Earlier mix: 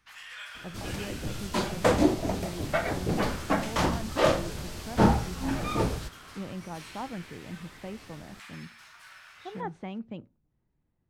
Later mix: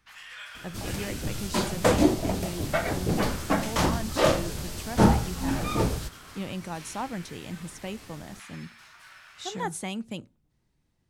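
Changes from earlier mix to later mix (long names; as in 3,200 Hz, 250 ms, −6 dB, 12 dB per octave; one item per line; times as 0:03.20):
speech: remove head-to-tape spacing loss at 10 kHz 43 dB
second sound: add high-shelf EQ 5,600 Hz +8 dB
master: add low-shelf EQ 360 Hz +3 dB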